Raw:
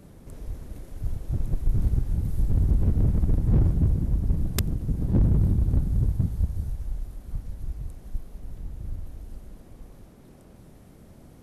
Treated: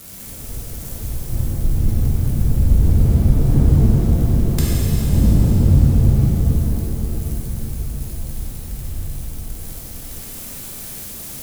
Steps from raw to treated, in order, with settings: switching spikes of -27.5 dBFS; shimmer reverb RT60 3.6 s, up +7 st, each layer -8 dB, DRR -8 dB; gain -1 dB

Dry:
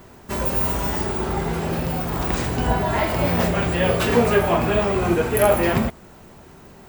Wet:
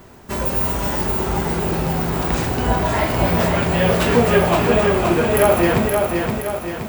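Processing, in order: lo-fi delay 0.522 s, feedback 55%, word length 7-bit, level -4 dB; gain +1.5 dB

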